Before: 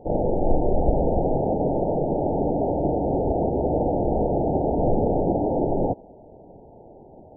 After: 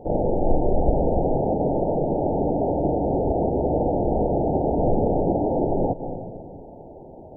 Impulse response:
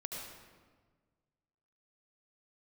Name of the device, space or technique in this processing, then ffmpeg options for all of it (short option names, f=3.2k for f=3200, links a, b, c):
ducked reverb: -filter_complex "[0:a]asplit=3[a][b][c];[1:a]atrim=start_sample=2205[d];[b][d]afir=irnorm=-1:irlink=0[e];[c]apad=whole_len=324593[f];[e][f]sidechaincompress=threshold=-39dB:ratio=5:attack=8.6:release=118,volume=-2dB[g];[a][g]amix=inputs=2:normalize=0"